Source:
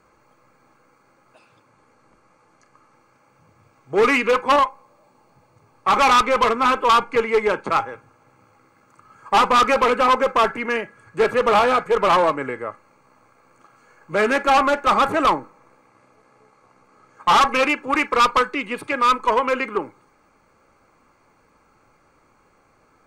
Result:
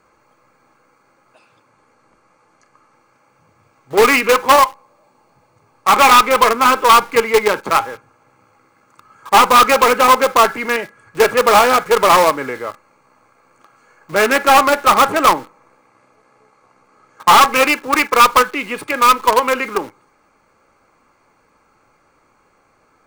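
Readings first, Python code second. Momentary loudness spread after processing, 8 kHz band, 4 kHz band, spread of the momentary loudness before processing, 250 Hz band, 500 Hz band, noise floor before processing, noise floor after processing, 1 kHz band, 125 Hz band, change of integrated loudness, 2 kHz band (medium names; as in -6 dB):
12 LU, +13.5 dB, +7.5 dB, 10 LU, +3.0 dB, +4.5 dB, -59 dBFS, -58 dBFS, +6.0 dB, +3.0 dB, +6.0 dB, +6.0 dB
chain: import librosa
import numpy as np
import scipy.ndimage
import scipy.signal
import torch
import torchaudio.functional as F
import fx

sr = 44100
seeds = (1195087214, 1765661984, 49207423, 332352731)

p1 = fx.quant_companded(x, sr, bits=2)
p2 = x + (p1 * 10.0 ** (-12.0 / 20.0))
p3 = fx.low_shelf(p2, sr, hz=290.0, db=-4.5)
y = p3 * 10.0 ** (2.5 / 20.0)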